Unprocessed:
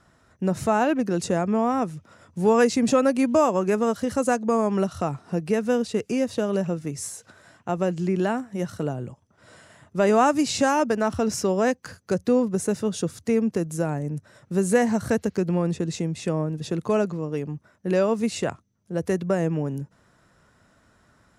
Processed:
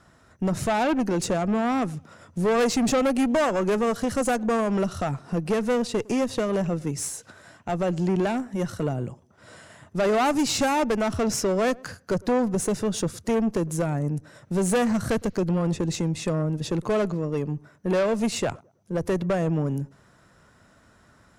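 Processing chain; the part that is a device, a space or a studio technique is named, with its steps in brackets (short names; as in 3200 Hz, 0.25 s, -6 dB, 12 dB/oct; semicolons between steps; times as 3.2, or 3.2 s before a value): rockabilly slapback (tube stage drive 22 dB, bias 0.35; tape echo 0.109 s, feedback 35%, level -21.5 dB, low-pass 1000 Hz); gain +4 dB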